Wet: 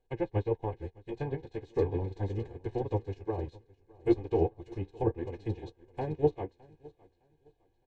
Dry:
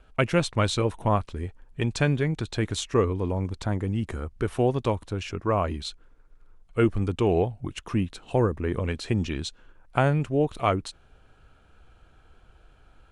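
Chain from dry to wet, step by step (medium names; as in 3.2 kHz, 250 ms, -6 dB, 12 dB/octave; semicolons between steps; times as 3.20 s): spectral levelling over time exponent 0.6; low-pass 6.3 kHz 12 dB/octave; hum notches 60/120/180/240/300/360/420/480/540 Hz; low-pass that closes with the level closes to 1.8 kHz, closed at -16.5 dBFS; Butterworth band-stop 1.3 kHz, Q 2.5; peaking EQ 2.6 kHz -7 dB 1.9 oct; comb 2.4 ms, depth 64%; time stretch by phase-locked vocoder 0.6×; flange 0.38 Hz, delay 7.9 ms, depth 7.3 ms, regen +40%; on a send: feedback delay 611 ms, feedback 55%, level -10 dB; on the sum: upward expansion 2.5:1, over -39 dBFS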